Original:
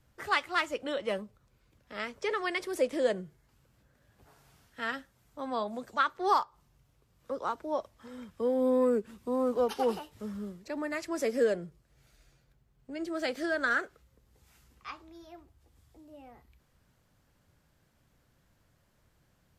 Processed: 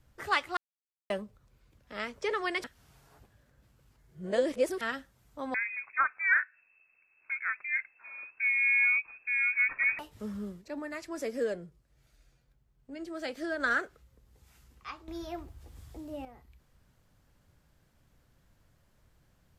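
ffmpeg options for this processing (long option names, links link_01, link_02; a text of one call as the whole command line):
ffmpeg -i in.wav -filter_complex "[0:a]asettb=1/sr,asplit=3[link_01][link_02][link_03];[link_01]atrim=end=5.544[link_04];[link_02]atrim=start=5.54:end=9.99,asetpts=PTS-STARTPTS,afade=type=in:duration=0.004:curve=qsin,afade=type=out:start_time=4.446:duration=0.004:curve=qsin,lowpass=frequency=2300:width_type=q:width=0.5098,lowpass=frequency=2300:width_type=q:width=0.6013,lowpass=frequency=2300:width_type=q:width=0.9,lowpass=frequency=2300:width_type=q:width=2.563,afreqshift=-2700[link_05];[link_03]atrim=start=9.986[link_06];[link_04][link_05]acrossfade=duration=0.004:curve1=hsin:curve2=qsin[link_07];[link_07][link_06]acrossfade=duration=0.004:curve1=qsin:curve2=hsin,asettb=1/sr,asplit=3[link_08][link_09][link_10];[link_08]atrim=end=10.614[link_11];[link_09]atrim=start=10.61:end=13.6,asetpts=PTS-STARTPTS,afade=type=in:duration=0.004:curve=qsin,afade=type=out:start_time=2.986:duration=0.004:curve=qsin,flanger=delay=3:depth=1.2:regen=86:speed=1.4:shape=triangular[link_12];[link_10]atrim=start=13.596[link_13];[link_11][link_12]acrossfade=duration=0.004:curve1=hsin:curve2=qsin[link_14];[link_14][link_13]acrossfade=duration=0.004:curve1=qsin:curve2=hsin,asplit=7[link_15][link_16][link_17][link_18][link_19][link_20][link_21];[link_15]atrim=end=0.57,asetpts=PTS-STARTPTS,afade=type=out:start_time=0.566:duration=0.004:curve=hsin[link_22];[link_16]atrim=start=0.57:end=1.1,asetpts=PTS-STARTPTS,volume=0[link_23];[link_17]atrim=start=1.1:end=2.642,asetpts=PTS-STARTPTS,afade=type=in:duration=0.004:curve=hsin[link_24];[link_18]atrim=start=2.638:end=4.812,asetpts=PTS-STARTPTS,areverse[link_25];[link_19]atrim=start=4.808:end=15.082[link_26];[link_20]atrim=start=15.078:end=16.252,asetpts=PTS-STARTPTS,volume=10.5dB[link_27];[link_21]atrim=start=16.248[link_28];[link_22][link_23][link_24]concat=n=3:v=0:a=1[link_29];[link_29][link_25]acrossfade=duration=0.004:curve1=hsin:curve2=hsin[link_30];[link_30][link_26]acrossfade=duration=0.004:curve1=hsin:curve2=hsin[link_31];[link_31][link_27]acrossfade=duration=0.004:curve1=hsin:curve2=hsin[link_32];[link_32][link_28]acrossfade=duration=0.004:curve1=hsin:curve2=hsin,lowshelf=frequency=64:gain=8" out.wav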